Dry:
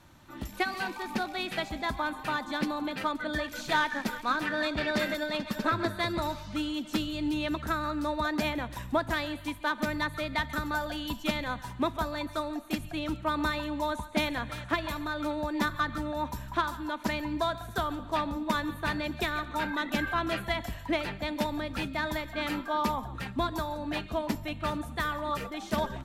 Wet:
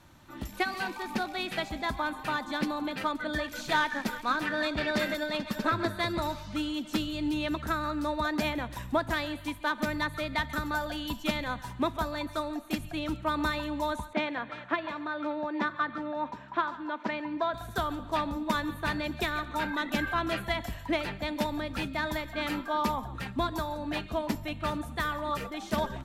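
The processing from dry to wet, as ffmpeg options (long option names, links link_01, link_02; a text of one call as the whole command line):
ffmpeg -i in.wav -filter_complex "[0:a]asettb=1/sr,asplit=3[link_01][link_02][link_03];[link_01]atrim=end=14.134[link_04];[link_02]atrim=start=14.13:end=17.54,asetpts=PTS-STARTPTS,afade=type=in:duration=0.004:curve=qsin,afade=type=out:start_time=3.406:duration=0.004:curve=qsin,highpass=240,lowpass=2700[link_05];[link_03]atrim=start=17.536[link_06];[link_04][link_05]acrossfade=duration=0.004:curve1=hsin:curve2=qsin[link_07];[link_07][link_06]acrossfade=duration=0.004:curve1=qsin:curve2=hsin" out.wav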